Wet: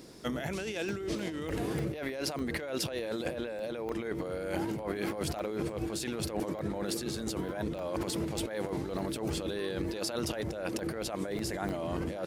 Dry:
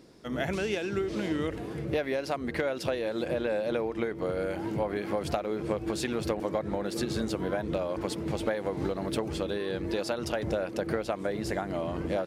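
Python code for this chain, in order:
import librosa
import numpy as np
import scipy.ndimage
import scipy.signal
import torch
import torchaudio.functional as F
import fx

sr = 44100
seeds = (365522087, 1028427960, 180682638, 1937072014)

y = fx.high_shelf(x, sr, hz=5800.0, db=9.5)
y = fx.over_compress(y, sr, threshold_db=-35.0, ratio=-1.0)
y = fx.buffer_crackle(y, sr, first_s=0.59, period_s=0.3, block=64, kind='zero')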